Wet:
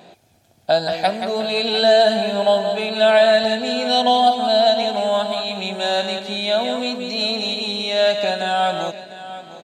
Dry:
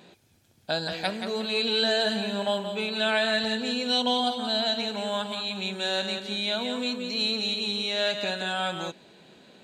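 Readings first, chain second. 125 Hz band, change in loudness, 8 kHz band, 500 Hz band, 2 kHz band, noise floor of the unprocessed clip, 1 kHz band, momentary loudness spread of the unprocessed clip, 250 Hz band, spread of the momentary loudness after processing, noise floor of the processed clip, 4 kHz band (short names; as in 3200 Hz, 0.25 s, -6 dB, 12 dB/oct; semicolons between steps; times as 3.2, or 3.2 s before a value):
n/a, +8.5 dB, +4.5 dB, +12.5 dB, +5.0 dB, -62 dBFS, +13.5 dB, 7 LU, +5.0 dB, 9 LU, -57 dBFS, +4.5 dB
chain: bell 690 Hz +12.5 dB 0.48 oct; on a send: echo 0.701 s -14.5 dB; on the sum: gain +4.5 dB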